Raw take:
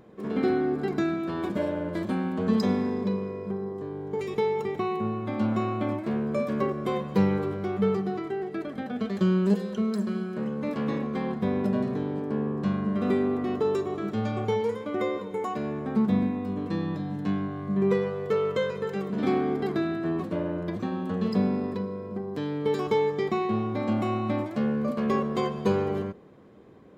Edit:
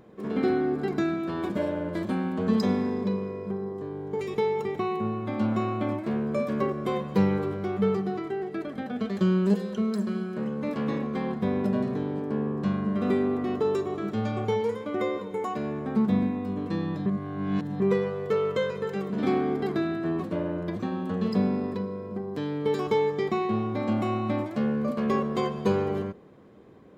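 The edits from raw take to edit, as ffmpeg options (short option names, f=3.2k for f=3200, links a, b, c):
-filter_complex "[0:a]asplit=3[a][b][c];[a]atrim=end=17.062[d];[b]atrim=start=17.058:end=17.802,asetpts=PTS-STARTPTS,areverse[e];[c]atrim=start=17.798[f];[d][e]acrossfade=d=0.004:c1=hsin:c2=hsin[g];[g][f]acrossfade=d=0.004:c1=hsin:c2=hsin"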